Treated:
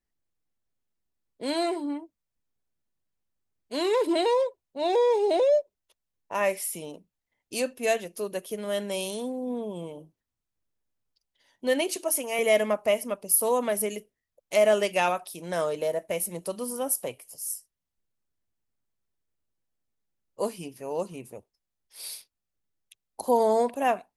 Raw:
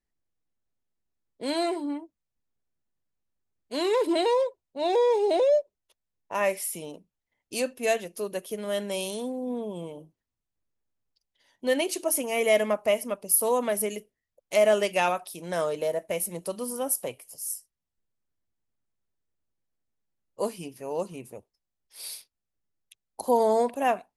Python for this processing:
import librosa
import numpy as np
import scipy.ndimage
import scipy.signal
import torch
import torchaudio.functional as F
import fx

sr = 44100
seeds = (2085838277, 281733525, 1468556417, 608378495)

y = fx.highpass(x, sr, hz=390.0, slope=6, at=(11.96, 12.39))